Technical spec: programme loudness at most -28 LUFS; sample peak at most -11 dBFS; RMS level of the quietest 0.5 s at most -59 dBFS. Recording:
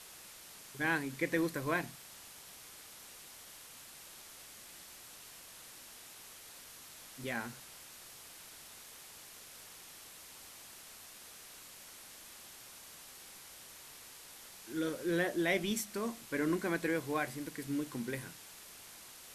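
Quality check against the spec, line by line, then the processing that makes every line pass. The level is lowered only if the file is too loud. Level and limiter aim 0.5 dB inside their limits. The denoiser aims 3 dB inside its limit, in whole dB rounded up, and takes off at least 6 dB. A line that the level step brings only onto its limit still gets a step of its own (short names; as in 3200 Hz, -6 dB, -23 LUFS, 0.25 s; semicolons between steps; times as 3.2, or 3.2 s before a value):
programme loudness -40.5 LUFS: OK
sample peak -18.5 dBFS: OK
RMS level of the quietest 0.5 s -53 dBFS: fail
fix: denoiser 9 dB, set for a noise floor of -53 dBFS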